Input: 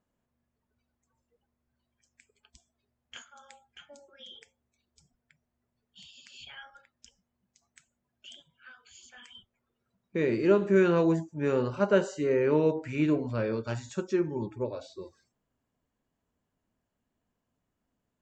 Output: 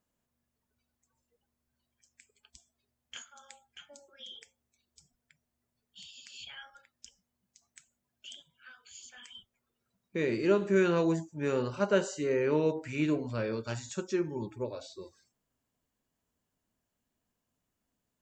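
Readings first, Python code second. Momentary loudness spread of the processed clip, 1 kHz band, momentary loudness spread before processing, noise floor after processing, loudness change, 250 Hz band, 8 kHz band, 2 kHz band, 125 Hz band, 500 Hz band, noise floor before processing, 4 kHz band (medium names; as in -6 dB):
22 LU, -2.5 dB, 17 LU, -84 dBFS, -3.0 dB, -3.5 dB, no reading, -1.0 dB, -3.5 dB, -3.5 dB, -83 dBFS, +1.5 dB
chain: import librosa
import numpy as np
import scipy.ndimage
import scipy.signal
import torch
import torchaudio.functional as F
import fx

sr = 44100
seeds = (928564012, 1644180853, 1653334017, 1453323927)

y = fx.high_shelf(x, sr, hz=3100.0, db=9.5)
y = F.gain(torch.from_numpy(y), -3.5).numpy()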